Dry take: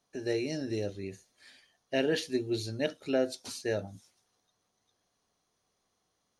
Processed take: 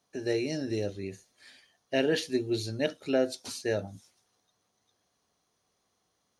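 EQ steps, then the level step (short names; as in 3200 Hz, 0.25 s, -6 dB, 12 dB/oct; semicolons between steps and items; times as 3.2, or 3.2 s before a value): HPF 42 Hz; +2.0 dB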